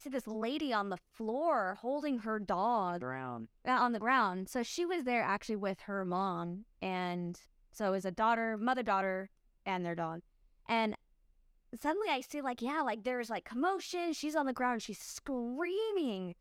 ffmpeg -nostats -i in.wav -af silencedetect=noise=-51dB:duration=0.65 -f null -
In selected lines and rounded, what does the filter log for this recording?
silence_start: 10.95
silence_end: 11.73 | silence_duration: 0.78